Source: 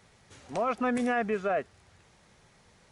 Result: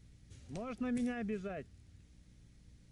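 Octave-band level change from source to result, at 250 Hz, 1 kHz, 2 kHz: -5.0 dB, -19.0 dB, -14.5 dB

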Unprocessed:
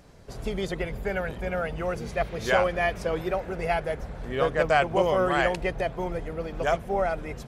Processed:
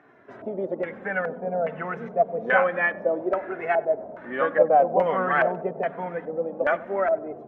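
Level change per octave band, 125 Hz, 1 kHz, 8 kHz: -7.0 dB, +3.0 dB, under -25 dB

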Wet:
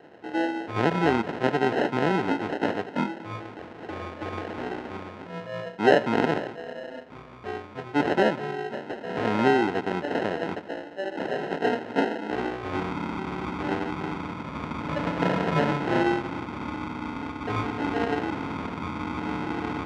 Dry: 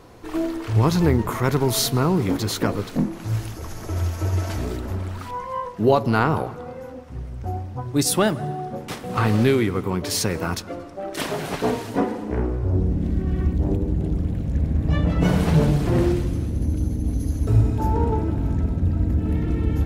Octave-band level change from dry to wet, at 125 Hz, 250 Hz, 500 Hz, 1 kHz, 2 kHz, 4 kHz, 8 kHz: -14.0 dB, -4.5 dB, -1.5 dB, +0.5 dB, +2.5 dB, -6.5 dB, under -20 dB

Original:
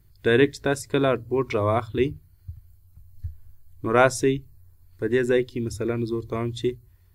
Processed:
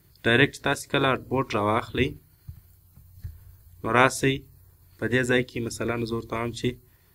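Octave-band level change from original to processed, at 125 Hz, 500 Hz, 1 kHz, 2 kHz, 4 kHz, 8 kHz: -1.0 dB, -4.5 dB, +1.0 dB, +4.0 dB, +5.0 dB, 0.0 dB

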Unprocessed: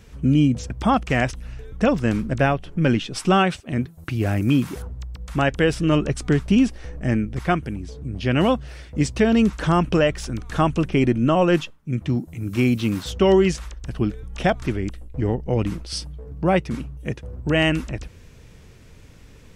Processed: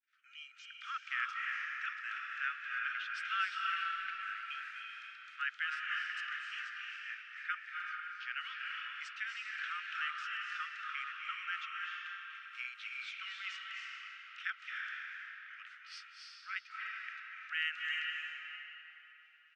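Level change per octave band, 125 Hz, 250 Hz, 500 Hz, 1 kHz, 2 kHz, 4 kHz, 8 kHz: under -40 dB, under -40 dB, under -40 dB, -15.5 dB, -7.0 dB, -11.5 dB, under -20 dB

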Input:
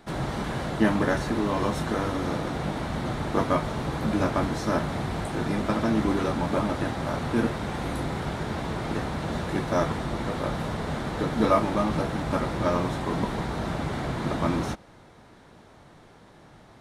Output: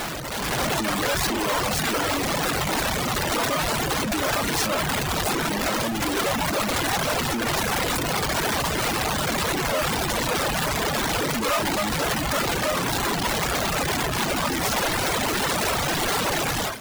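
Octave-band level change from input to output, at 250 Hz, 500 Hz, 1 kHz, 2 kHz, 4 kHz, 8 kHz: -1.5 dB, +2.0 dB, +5.0 dB, +9.5 dB, +14.0 dB, +18.0 dB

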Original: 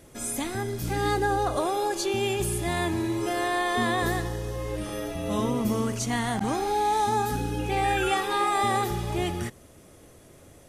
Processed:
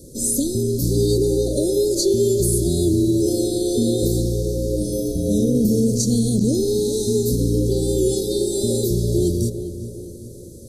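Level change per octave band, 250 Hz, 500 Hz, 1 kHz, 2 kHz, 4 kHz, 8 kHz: +10.5 dB, +9.5 dB, under -20 dB, under -40 dB, +4.0 dB, +10.5 dB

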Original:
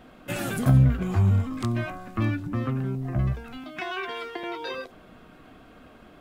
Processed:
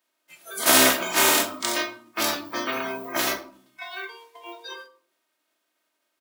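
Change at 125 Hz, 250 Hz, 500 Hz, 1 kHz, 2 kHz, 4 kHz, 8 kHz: -26.0 dB, -4.0 dB, +5.5 dB, +8.0 dB, +10.0 dB, +16.0 dB, no reading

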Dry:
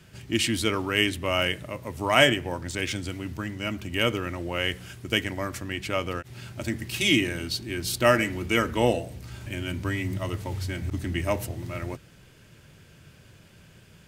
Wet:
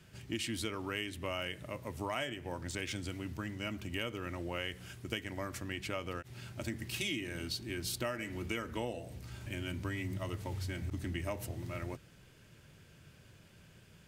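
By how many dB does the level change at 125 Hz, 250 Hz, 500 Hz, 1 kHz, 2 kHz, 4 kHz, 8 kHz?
-9.5 dB, -11.5 dB, -13.5 dB, -13.5 dB, -13.5 dB, -13.5 dB, -10.5 dB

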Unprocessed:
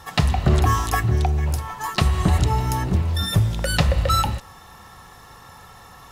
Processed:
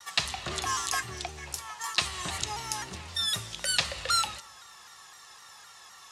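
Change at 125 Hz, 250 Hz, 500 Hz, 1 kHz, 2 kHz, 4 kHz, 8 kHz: -25.5 dB, -21.0 dB, -14.5 dB, -9.5 dB, -4.0 dB, 0.0 dB, +1.0 dB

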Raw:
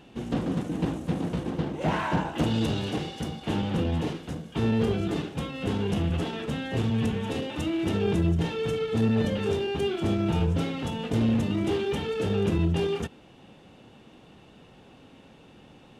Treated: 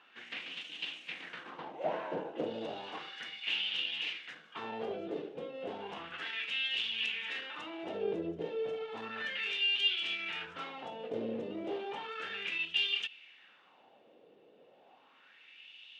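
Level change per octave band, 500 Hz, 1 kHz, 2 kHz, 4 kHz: -10.0 dB, -8.5 dB, +1.5 dB, +3.5 dB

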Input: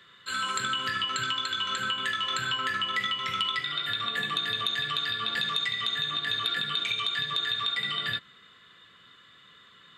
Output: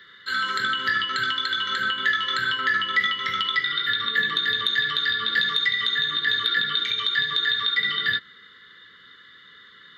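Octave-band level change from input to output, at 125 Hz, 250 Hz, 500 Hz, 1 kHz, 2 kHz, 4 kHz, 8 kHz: -1.0 dB, +2.0 dB, +3.0 dB, +3.0 dB, +9.0 dB, +4.5 dB, no reading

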